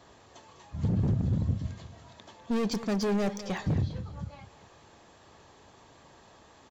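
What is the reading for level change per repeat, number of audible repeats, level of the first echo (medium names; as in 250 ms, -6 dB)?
-9.0 dB, 3, -14.0 dB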